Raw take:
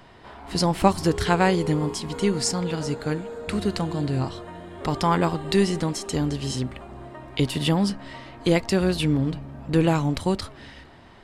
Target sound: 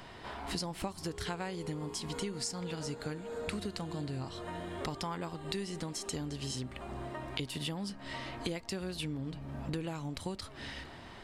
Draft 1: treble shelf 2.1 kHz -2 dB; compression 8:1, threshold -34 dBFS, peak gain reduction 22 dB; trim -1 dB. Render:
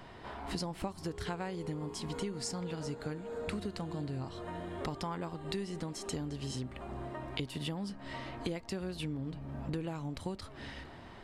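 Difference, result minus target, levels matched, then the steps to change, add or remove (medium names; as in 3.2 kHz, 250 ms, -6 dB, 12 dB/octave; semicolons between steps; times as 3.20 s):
4 kHz band -3.0 dB
change: treble shelf 2.1 kHz +5 dB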